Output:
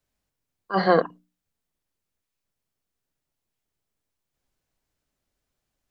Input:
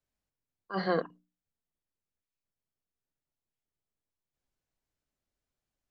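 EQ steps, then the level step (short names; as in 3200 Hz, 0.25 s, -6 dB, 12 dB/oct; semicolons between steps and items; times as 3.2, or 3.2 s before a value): dynamic EQ 810 Hz, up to +5 dB, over -44 dBFS, Q 1.1; +8.0 dB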